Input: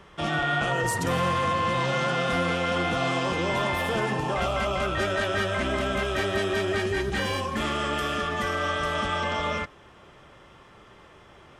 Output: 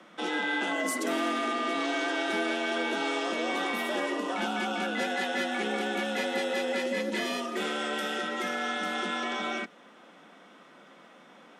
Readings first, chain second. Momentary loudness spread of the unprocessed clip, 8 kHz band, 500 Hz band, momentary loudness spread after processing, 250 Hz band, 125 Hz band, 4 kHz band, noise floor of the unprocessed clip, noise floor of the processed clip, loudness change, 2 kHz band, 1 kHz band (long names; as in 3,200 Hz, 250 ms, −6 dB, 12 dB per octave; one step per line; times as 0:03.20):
3 LU, −2.0 dB, −4.5 dB, 3 LU, −1.5 dB, below −20 dB, −2.5 dB, −52 dBFS, −54 dBFS, −4.0 dB, −2.5 dB, −5.5 dB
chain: frequency shifter +150 Hz
dynamic equaliser 1,000 Hz, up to −5 dB, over −40 dBFS, Q 1.3
level −2.5 dB